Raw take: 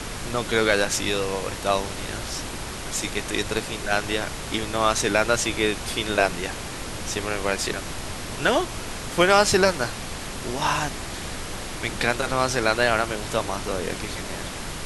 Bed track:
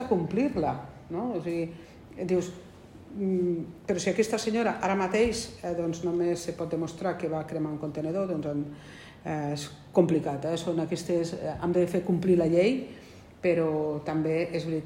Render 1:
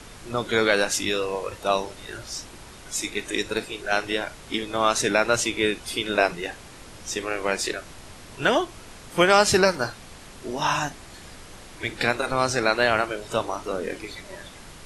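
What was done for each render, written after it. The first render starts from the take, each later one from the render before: noise print and reduce 11 dB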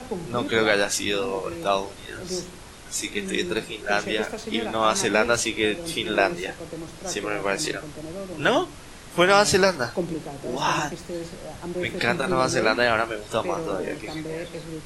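add bed track -5.5 dB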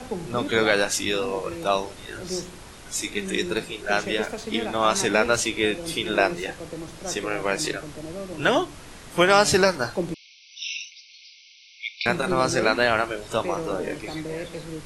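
10.14–12.06 brick-wall FIR band-pass 2100–6100 Hz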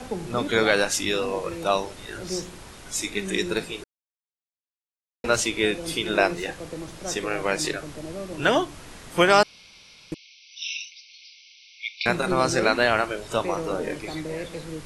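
3.84–5.24 mute; 9.43–10.12 room tone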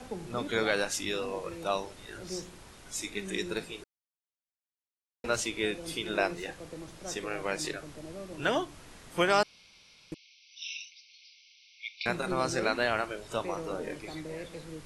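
gain -8 dB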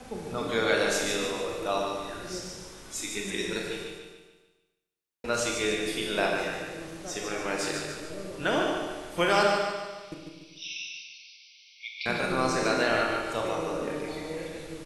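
feedback echo 0.146 s, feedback 46%, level -6 dB; Schroeder reverb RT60 0.99 s, combs from 27 ms, DRR 1 dB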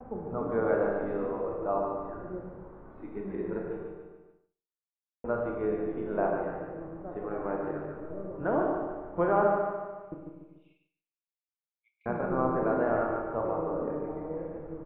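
inverse Chebyshev low-pass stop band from 6500 Hz, stop band 80 dB; expander -56 dBFS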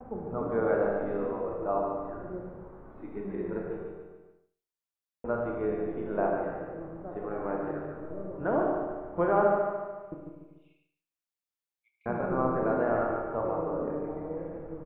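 echo 78 ms -12.5 dB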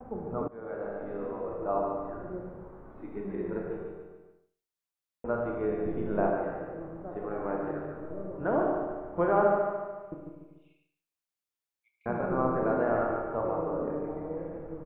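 0.48–1.8 fade in, from -20 dB; 5.85–6.32 tone controls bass +7 dB, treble +6 dB

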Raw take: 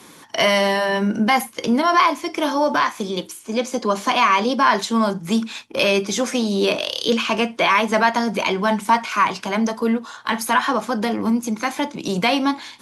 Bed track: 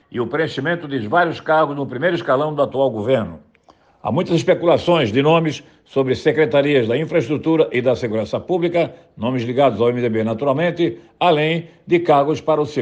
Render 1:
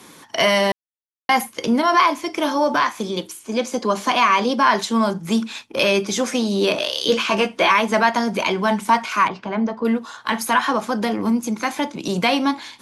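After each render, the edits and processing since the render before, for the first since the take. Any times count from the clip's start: 0.72–1.29 mute; 6.76–7.72 doubler 15 ms -4.5 dB; 9.28–9.85 tape spacing loss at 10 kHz 31 dB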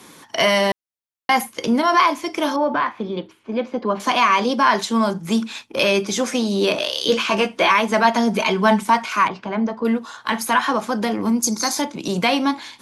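2.56–4 air absorption 380 m; 8.04–8.83 comb 4.6 ms, depth 60%; 11.42–11.82 resonant high shelf 3700 Hz +10 dB, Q 3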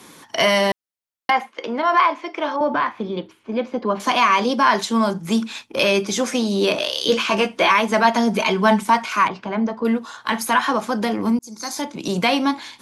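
1.3–2.61 BPF 420–2700 Hz; 11.39–12.04 fade in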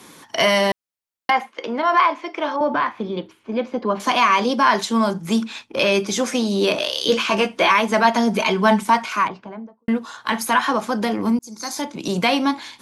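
5.44–5.92 high shelf 8800 Hz -10.5 dB; 9–9.88 studio fade out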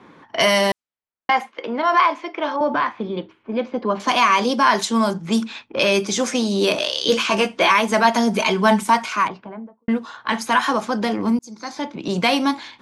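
low-pass opened by the level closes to 1700 Hz, open at -14.5 dBFS; dynamic EQ 8500 Hz, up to +5 dB, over -40 dBFS, Q 0.81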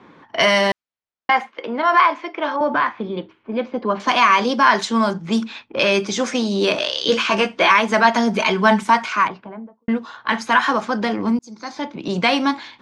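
LPF 6000 Hz 12 dB/oct; dynamic EQ 1600 Hz, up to +4 dB, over -32 dBFS, Q 1.4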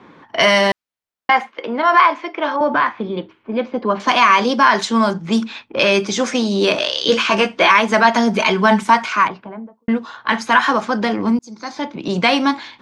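gain +2.5 dB; limiter -2 dBFS, peak gain reduction 2.5 dB

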